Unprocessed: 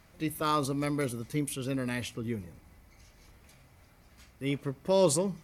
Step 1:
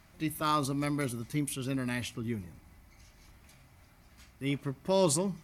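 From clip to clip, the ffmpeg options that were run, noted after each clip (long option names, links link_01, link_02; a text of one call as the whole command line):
ffmpeg -i in.wav -af "equalizer=frequency=480:width=5.9:gain=-12.5" out.wav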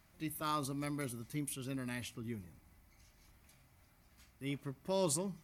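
ffmpeg -i in.wav -af "highshelf=frequency=11000:gain=8,volume=-8dB" out.wav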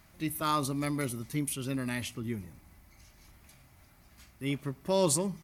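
ffmpeg -i in.wav -filter_complex "[0:a]asplit=2[link_01][link_02];[link_02]adelay=110.8,volume=-29dB,highshelf=frequency=4000:gain=-2.49[link_03];[link_01][link_03]amix=inputs=2:normalize=0,volume=7.5dB" out.wav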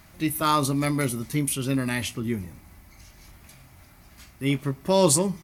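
ffmpeg -i in.wav -filter_complex "[0:a]asplit=2[link_01][link_02];[link_02]adelay=22,volume=-13dB[link_03];[link_01][link_03]amix=inputs=2:normalize=0,volume=7.5dB" out.wav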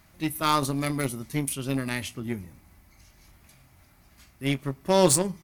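ffmpeg -i in.wav -af "aeval=exprs='0.473*(cos(1*acos(clip(val(0)/0.473,-1,1)))-cos(1*PI/2))+0.0335*(cos(7*acos(clip(val(0)/0.473,-1,1)))-cos(7*PI/2))':channel_layout=same" out.wav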